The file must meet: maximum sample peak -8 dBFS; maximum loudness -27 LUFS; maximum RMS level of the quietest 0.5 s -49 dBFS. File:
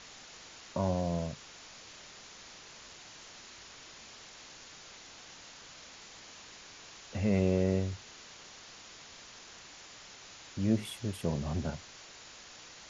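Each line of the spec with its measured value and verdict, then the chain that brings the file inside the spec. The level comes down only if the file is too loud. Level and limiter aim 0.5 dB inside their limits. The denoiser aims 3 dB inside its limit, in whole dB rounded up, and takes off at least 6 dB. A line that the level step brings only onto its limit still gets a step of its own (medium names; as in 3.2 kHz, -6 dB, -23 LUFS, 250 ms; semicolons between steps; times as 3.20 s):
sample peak -16.5 dBFS: pass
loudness -33.5 LUFS: pass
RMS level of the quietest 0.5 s -52 dBFS: pass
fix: none needed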